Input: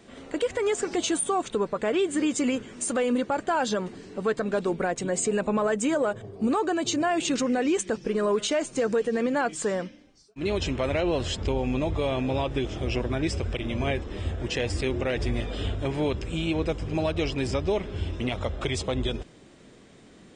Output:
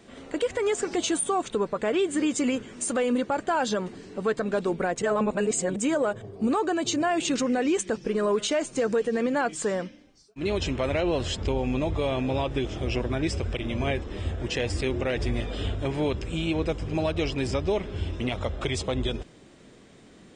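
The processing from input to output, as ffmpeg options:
ffmpeg -i in.wav -filter_complex "[0:a]asplit=3[link_01][link_02][link_03];[link_01]atrim=end=5.022[link_04];[link_02]atrim=start=5.018:end=5.762,asetpts=PTS-STARTPTS,areverse[link_05];[link_03]atrim=start=5.758[link_06];[link_04][link_05]acrossfade=duration=0.004:curve1=hsin:curve2=hsin[link_07];[link_07][link_06]acrossfade=duration=0.004:curve1=hsin:curve2=hsin" out.wav

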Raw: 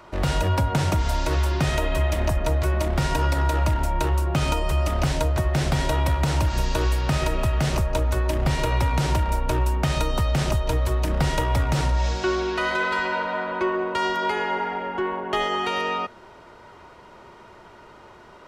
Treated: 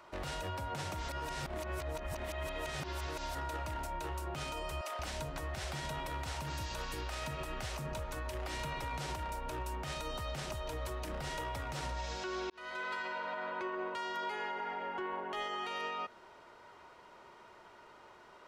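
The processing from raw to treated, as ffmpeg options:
ffmpeg -i in.wav -filter_complex "[0:a]asettb=1/sr,asplit=3[link_01][link_02][link_03];[link_01]atrim=end=4.814[link_04];[link_02]atrim=start=4.81:end=8.84,asetpts=PTS-STARTPTS,afade=type=in:duration=0.004:curve=qsin,afade=type=out:start_time=4.026:duration=0.004:curve=qsin,acrossover=split=440[link_05][link_06];[link_05]adelay=180[link_07];[link_07][link_06]amix=inputs=2:normalize=0,atrim=end_sample=177723[link_08];[link_03]atrim=start=8.836[link_09];[link_04][link_08]acrossfade=duration=0.004:curve1=hsin:curve2=qsin[link_10];[link_10][link_09]acrossfade=duration=0.004:curve1=qsin:curve2=hsin,asplit=4[link_11][link_12][link_13][link_14];[link_11]atrim=end=1.092[link_15];[link_12]atrim=start=1.088:end=3.352,asetpts=PTS-STARTPTS,areverse[link_16];[link_13]atrim=start=3.348:end=12.5,asetpts=PTS-STARTPTS,afade=type=out:start_time=9.148:duration=0.004:curve=hsin[link_17];[link_14]atrim=start=12.5,asetpts=PTS-STARTPTS,afade=type=in:duration=0.95:curve=qsin[link_18];[link_15][link_16]acrossfade=duration=0.004:curve1=hsin:curve2=hsin[link_19];[link_17][link_18]concat=n=2:v=0:a=1[link_20];[link_19][link_20]acrossfade=duration=0.004:curve1=hsin:curve2=hsin,lowshelf=frequency=290:gain=-10.5,alimiter=limit=-22.5dB:level=0:latency=1:release=83,volume=-8dB" out.wav

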